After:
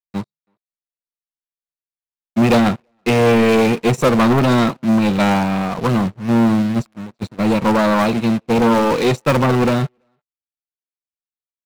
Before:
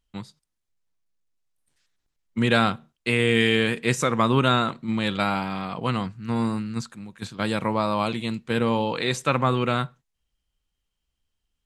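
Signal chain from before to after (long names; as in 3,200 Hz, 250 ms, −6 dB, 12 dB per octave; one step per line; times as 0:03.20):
moving average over 27 samples
low-shelf EQ 240 Hz +6 dB
leveller curve on the samples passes 3
spectral tilt +3.5 dB per octave
soft clipping −8 dBFS, distortion −23 dB
leveller curve on the samples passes 3
far-end echo of a speakerphone 330 ms, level −23 dB
expander for the loud parts 2.5 to 1, over −26 dBFS
level +2 dB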